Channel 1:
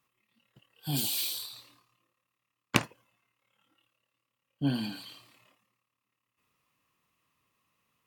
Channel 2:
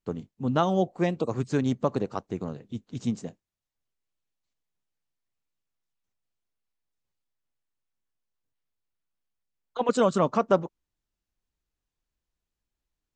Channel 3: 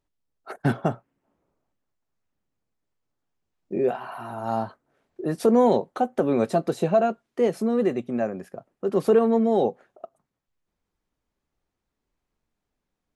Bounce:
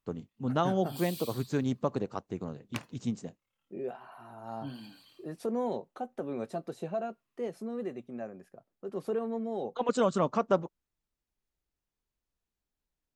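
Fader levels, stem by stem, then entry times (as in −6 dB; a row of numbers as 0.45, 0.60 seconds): −13.0, −4.5, −14.0 decibels; 0.00, 0.00, 0.00 seconds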